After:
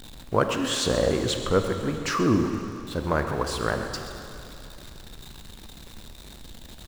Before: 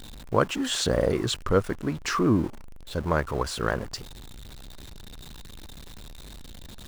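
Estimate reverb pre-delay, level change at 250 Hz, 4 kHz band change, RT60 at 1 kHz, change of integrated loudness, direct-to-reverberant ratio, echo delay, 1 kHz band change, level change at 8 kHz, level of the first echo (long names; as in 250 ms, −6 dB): 20 ms, +1.0 dB, +1.0 dB, 2.9 s, +1.0 dB, 5.0 dB, 134 ms, +1.0 dB, +1.0 dB, −13.5 dB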